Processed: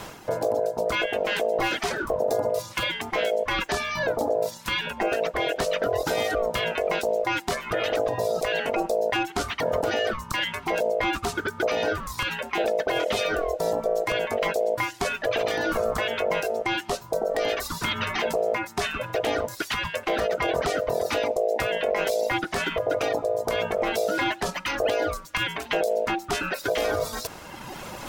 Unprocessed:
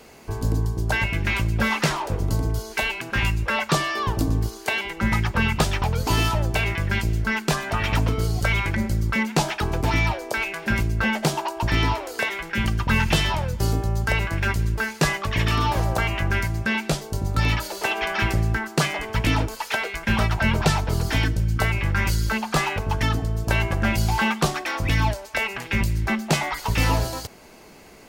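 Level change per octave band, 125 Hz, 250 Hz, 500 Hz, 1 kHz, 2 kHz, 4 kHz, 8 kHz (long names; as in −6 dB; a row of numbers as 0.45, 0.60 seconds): −18.0, −7.0, +7.0, −2.0, −4.0, −2.0, −4.5 decibels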